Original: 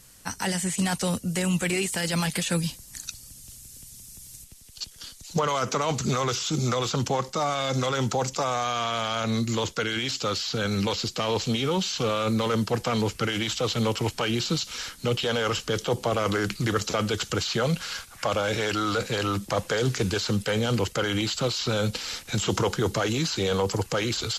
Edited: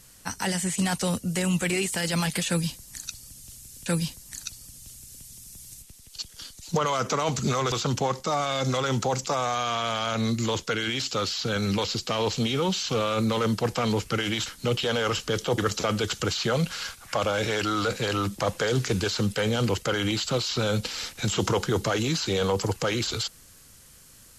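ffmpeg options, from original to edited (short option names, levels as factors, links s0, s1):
-filter_complex "[0:a]asplit=5[s0][s1][s2][s3][s4];[s0]atrim=end=3.862[s5];[s1]atrim=start=2.478:end=6.342[s6];[s2]atrim=start=6.808:end=13.552[s7];[s3]atrim=start=14.858:end=15.982[s8];[s4]atrim=start=16.678[s9];[s5][s6]acrossfade=d=0.004:c1=hsin:c2=hsin[s10];[s10][s7]acrossfade=d=0.004:c1=hsin:c2=hsin[s11];[s11][s8]acrossfade=d=0.004:c1=hsin:c2=hsin[s12];[s12][s9]acrossfade=d=0.004:c1=hsin:c2=hsin"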